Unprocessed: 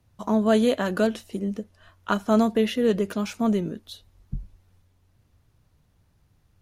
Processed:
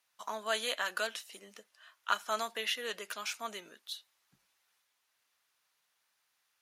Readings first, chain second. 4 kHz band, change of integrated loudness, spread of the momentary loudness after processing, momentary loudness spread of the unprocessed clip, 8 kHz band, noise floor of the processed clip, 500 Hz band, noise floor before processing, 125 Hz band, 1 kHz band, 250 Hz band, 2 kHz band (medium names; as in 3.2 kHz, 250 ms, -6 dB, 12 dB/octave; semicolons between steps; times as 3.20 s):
0.0 dB, -12.5 dB, 14 LU, 18 LU, 0.0 dB, -79 dBFS, -17.0 dB, -65 dBFS, under -30 dB, -7.0 dB, -32.0 dB, -2.0 dB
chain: high-pass 1.4 kHz 12 dB/octave